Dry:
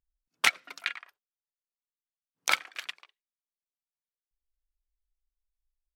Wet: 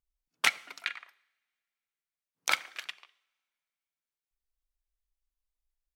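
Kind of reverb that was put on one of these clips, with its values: two-slope reverb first 0.77 s, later 2.4 s, from -25 dB, DRR 18.5 dB; trim -2 dB

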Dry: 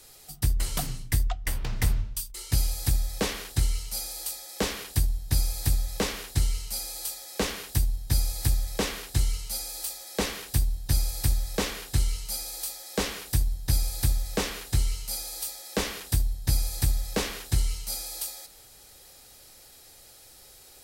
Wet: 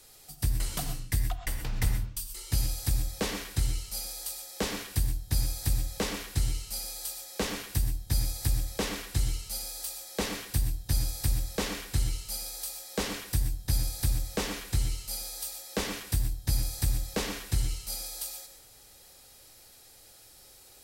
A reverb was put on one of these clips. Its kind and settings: gated-style reverb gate 150 ms rising, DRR 7 dB; trim -3.5 dB

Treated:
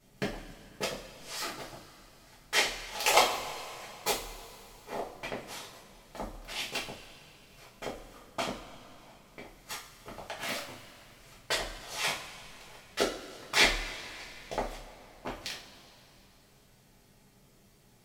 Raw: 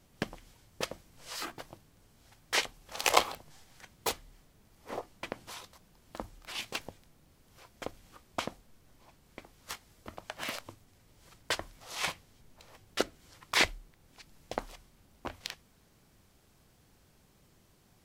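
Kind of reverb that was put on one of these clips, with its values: two-slope reverb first 0.35 s, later 3.2 s, from -19 dB, DRR -7 dB; trim -4.5 dB

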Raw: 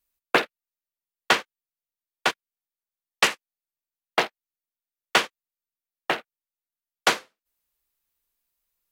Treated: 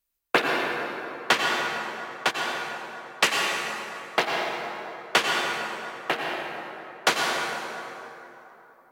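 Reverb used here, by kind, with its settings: plate-style reverb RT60 3.3 s, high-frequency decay 0.55×, pre-delay 80 ms, DRR -1 dB; trim -1.5 dB

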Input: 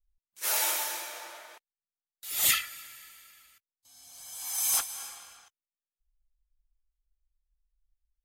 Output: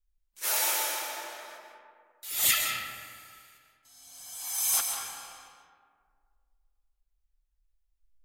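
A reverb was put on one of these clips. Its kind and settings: algorithmic reverb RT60 2 s, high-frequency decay 0.4×, pre-delay 95 ms, DRR 2 dB

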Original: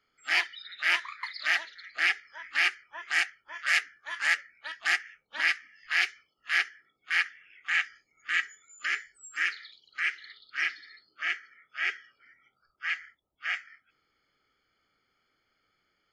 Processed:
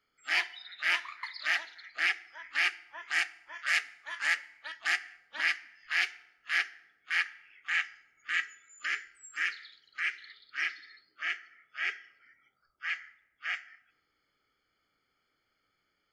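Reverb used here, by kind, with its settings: FDN reverb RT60 0.93 s, low-frequency decay 0.95×, high-frequency decay 0.7×, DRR 16 dB; trim -3 dB

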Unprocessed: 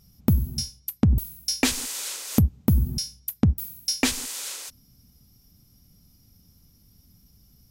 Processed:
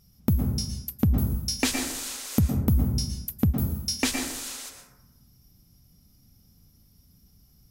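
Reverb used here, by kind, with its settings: plate-style reverb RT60 0.99 s, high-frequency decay 0.35×, pre-delay 100 ms, DRR 3 dB; trim -3 dB

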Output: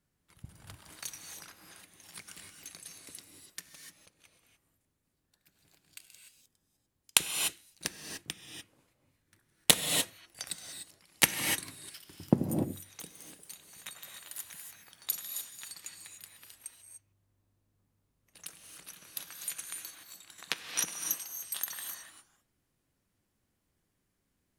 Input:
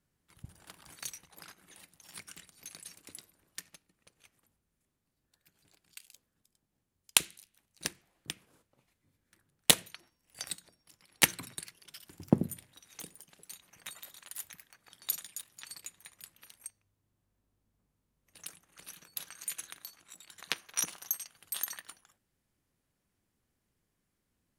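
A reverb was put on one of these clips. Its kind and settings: gated-style reverb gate 320 ms rising, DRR 3.5 dB

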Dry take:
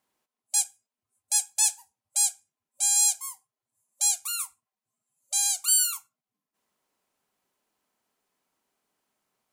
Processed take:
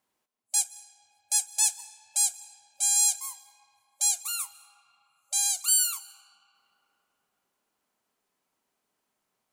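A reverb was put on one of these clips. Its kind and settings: algorithmic reverb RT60 3.6 s, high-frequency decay 0.5×, pre-delay 115 ms, DRR 16 dB; trim -1 dB

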